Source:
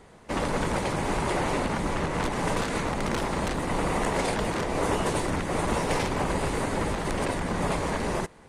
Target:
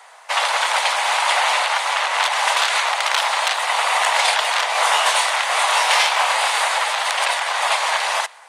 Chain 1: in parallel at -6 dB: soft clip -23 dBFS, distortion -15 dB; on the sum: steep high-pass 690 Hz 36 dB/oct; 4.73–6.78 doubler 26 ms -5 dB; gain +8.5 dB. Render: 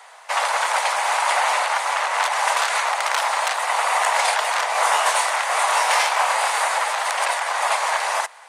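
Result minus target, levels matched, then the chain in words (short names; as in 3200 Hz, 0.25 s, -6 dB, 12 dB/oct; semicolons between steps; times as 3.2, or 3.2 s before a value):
4000 Hz band -4.5 dB
in parallel at -6 dB: soft clip -23 dBFS, distortion -15 dB; on the sum: steep high-pass 690 Hz 36 dB/oct; dynamic EQ 3400 Hz, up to +8 dB, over -48 dBFS, Q 1.2; 4.73–6.78 doubler 26 ms -5 dB; gain +8.5 dB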